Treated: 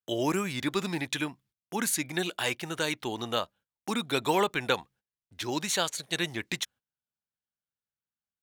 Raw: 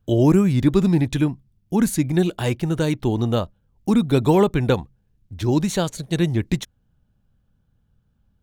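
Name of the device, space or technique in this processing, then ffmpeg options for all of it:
filter by subtraction: -filter_complex "[0:a]agate=range=-20dB:threshold=-46dB:ratio=16:detection=peak,asplit=2[a][b];[b]lowpass=2k,volume=-1[c];[a][c]amix=inputs=2:normalize=0"

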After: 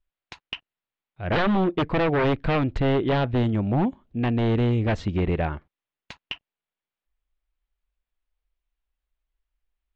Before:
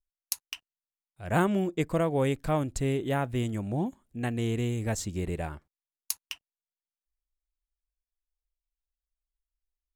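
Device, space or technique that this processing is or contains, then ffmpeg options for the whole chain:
synthesiser wavefolder: -filter_complex "[0:a]asettb=1/sr,asplit=3[a][b][c];[a]atrim=end=3.314[d];[b]atrim=start=3.31:end=4.88,asetpts=PTS-STARTPTS,afade=t=in:d=0.004:c=qsin,afade=t=out:st=1.566:d=0.004:c=qsin,equalizer=f=1.8k:t=o:w=0.99:g=-5[e];[c]atrim=start=4.876[f];[d][e]acrossfade=d=0.004:c1=hsin:c2=qsin[g];[g][f]acrossfade=d=0.004:c1=qsin:c2=hsin,aeval=exprs='0.0562*(abs(mod(val(0)/0.0562+3,4)-2)-1)':c=same,lowpass=f=3.4k:w=0.5412,lowpass=f=3.4k:w=1.3066,volume=9dB"

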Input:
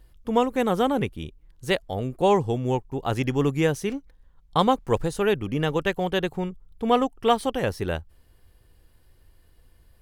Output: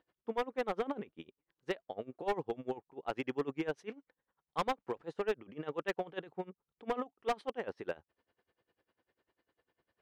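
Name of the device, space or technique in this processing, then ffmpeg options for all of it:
helicopter radio: -af "highpass=310,lowpass=2.6k,aeval=exprs='val(0)*pow(10,-23*(0.5-0.5*cos(2*PI*10*n/s))/20)':c=same,asoftclip=type=hard:threshold=-22dB,volume=-4.5dB"

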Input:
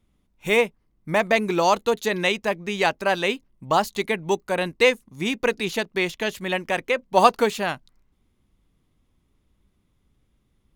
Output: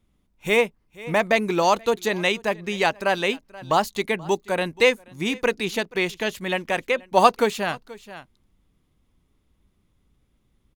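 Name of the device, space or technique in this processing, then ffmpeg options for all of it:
ducked delay: -filter_complex "[0:a]asplit=3[a][b][c];[b]adelay=480,volume=-8.5dB[d];[c]apad=whole_len=495260[e];[d][e]sidechaincompress=threshold=-36dB:ratio=8:attack=38:release=604[f];[a][f]amix=inputs=2:normalize=0"

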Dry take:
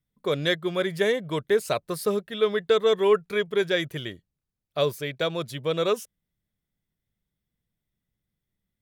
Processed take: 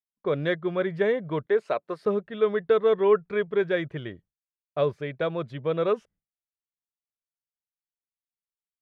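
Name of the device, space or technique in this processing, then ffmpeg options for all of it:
hearing-loss simulation: -filter_complex "[0:a]asettb=1/sr,asplit=3[a][b][c];[a]atrim=end=1.464[d];[b]atrim=start=1.46:end=2.04,asetpts=PTS-STARTPTS,afade=t=in:d=0.004:c=qsin,afade=t=out:st=0.576:d=0.004:c=qsin,highpass=300[e];[c]atrim=start=2.036[f];[d][e]acrossfade=d=0.004:c1=hsin:c2=qsin[g];[g][f]acrossfade=d=0.004:c1=qsin:c2=hsin,lowpass=1.8k,agate=range=-33dB:threshold=-49dB:ratio=3:detection=peak"

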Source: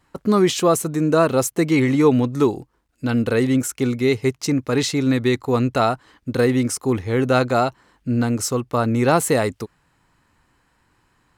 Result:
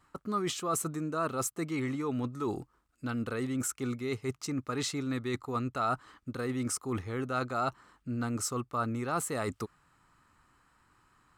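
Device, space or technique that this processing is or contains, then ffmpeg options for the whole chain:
compression on the reversed sound: -af "areverse,acompressor=threshold=-25dB:ratio=6,areverse,equalizer=f=500:t=o:w=0.33:g=-3,equalizer=f=1.25k:t=o:w=0.33:g=11,equalizer=f=8k:t=o:w=0.33:g=4,volume=-6dB"

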